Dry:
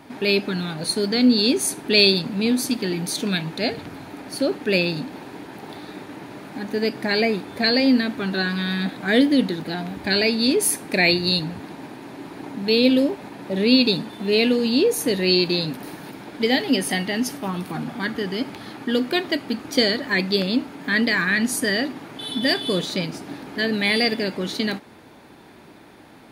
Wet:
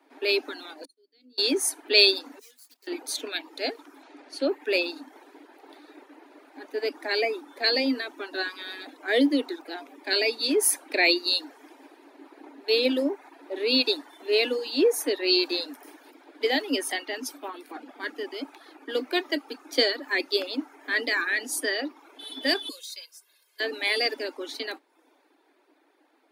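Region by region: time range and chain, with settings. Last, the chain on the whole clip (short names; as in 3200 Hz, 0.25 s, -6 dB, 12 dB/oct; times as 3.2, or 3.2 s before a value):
0.85–1.38 passive tone stack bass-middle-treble 10-0-1 + expander -38 dBFS
2.39–2.87 median filter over 15 samples + differentiator
4.03–4.48 LPF 5900 Hz + high shelf 4400 Hz +6 dB + upward compressor, threshold -33 dBFS
22.69–23.6 differentiator + comb 1.9 ms, depth 99%
whole clip: steep high-pass 270 Hz 96 dB/oct; reverb removal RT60 0.67 s; three-band expander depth 40%; gain -4 dB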